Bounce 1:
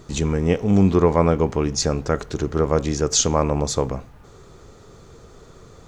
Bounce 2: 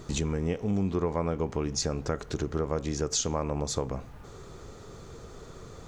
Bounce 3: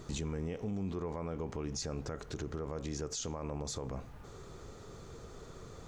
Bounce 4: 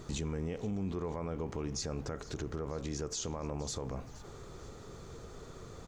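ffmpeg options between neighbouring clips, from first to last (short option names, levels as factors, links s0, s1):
-af "acompressor=threshold=0.0355:ratio=3"
-af "alimiter=level_in=1.19:limit=0.0631:level=0:latency=1:release=38,volume=0.841,volume=0.631"
-filter_complex "[0:a]asplit=5[s0][s1][s2][s3][s4];[s1]adelay=473,afreqshift=-100,volume=0.119[s5];[s2]adelay=946,afreqshift=-200,volume=0.0556[s6];[s3]adelay=1419,afreqshift=-300,volume=0.0263[s7];[s4]adelay=1892,afreqshift=-400,volume=0.0123[s8];[s0][s5][s6][s7][s8]amix=inputs=5:normalize=0,volume=1.12"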